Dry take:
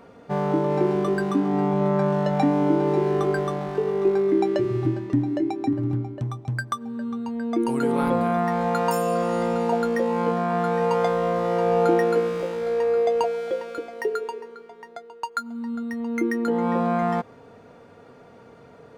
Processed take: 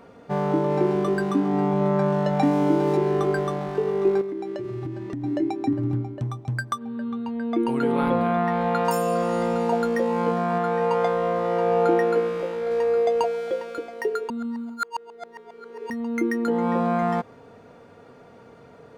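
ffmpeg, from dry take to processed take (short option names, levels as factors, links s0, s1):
-filter_complex "[0:a]asettb=1/sr,asplit=3[s0][s1][s2];[s0]atrim=end=2.434[s3];[s1]atrim=start=2.43:end=2.97,asetpts=PTS-STARTPTS,afade=t=in:d=0.004:c=qsin,afade=t=out:st=0.536:d=0.004:c=qsin,highshelf=f=4700:g=8.5[s4];[s2]atrim=start=2.966[s5];[s3][s4]acrossfade=d=0.004:c1=hsin:c2=qsin[s6];[s6][s5]acrossfade=d=0.004:c1=qsin:c2=hsin,asettb=1/sr,asplit=3[s7][s8][s9];[s7]atrim=end=4.214[s10];[s8]atrim=start=4.21:end=5.24,asetpts=PTS-STARTPTS,afade=t=in:d=0.004:c=qsin,afade=t=out:st=1.026:d=0.004:c=qsin,acompressor=threshold=0.0398:ratio=6:attack=3.2:release=140:knee=1:detection=peak[s11];[s9]atrim=start=5.236[s12];[s10][s11]acrossfade=d=0.004:c1=hsin:c2=qsin[s13];[s13][s12]acrossfade=d=0.004:c1=qsin:c2=hsin,asettb=1/sr,asplit=3[s14][s15][s16];[s14]atrim=end=6.784[s17];[s15]atrim=start=6.78:end=8.85,asetpts=PTS-STARTPTS,afade=t=in:d=0.004:c=qsin,afade=t=out:st=2.066:d=0.004:c=qsin,highshelf=f=4600:t=q:w=1.5:g=-8.5[s18];[s16]atrim=start=8.846[s19];[s17][s18]acrossfade=d=0.004:c1=hsin:c2=qsin[s20];[s20][s19]acrossfade=d=0.004:c1=qsin:c2=hsin,asettb=1/sr,asplit=3[s21][s22][s23];[s21]atrim=end=10.584[s24];[s22]atrim=start=10.58:end=12.71,asetpts=PTS-STARTPTS,afade=t=in:d=0.004:c=qsin,afade=t=out:st=2.126:d=0.004:c=qsin,bass=f=250:g=-4,treble=f=4000:g=-6[s25];[s23]atrim=start=12.706[s26];[s24][s25]acrossfade=d=0.004:c1=hsin:c2=qsin[s27];[s27][s26]acrossfade=d=0.004:c1=qsin:c2=hsin,asplit=3[s28][s29][s30];[s28]atrim=end=14.302[s31];[s29]atrim=start=14.298:end=15.902,asetpts=PTS-STARTPTS,areverse[s32];[s30]atrim=start=15.898[s33];[s31][s32]acrossfade=d=0.004:c1=hsin:c2=hsin[s34];[s34][s33]acrossfade=d=0.004:c1=hsin:c2=hsin"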